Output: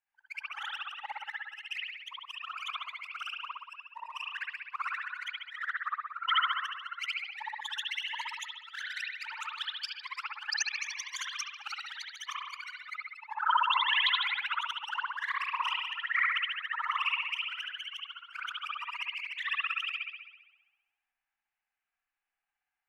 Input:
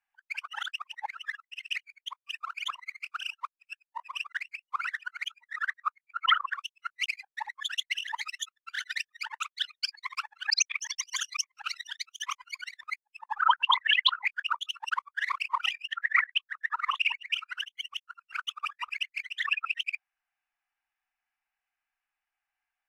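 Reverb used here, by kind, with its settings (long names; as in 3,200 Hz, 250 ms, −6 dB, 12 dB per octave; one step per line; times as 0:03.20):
spring reverb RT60 1.1 s, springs 59 ms, chirp 20 ms, DRR −4.5 dB
level −7.5 dB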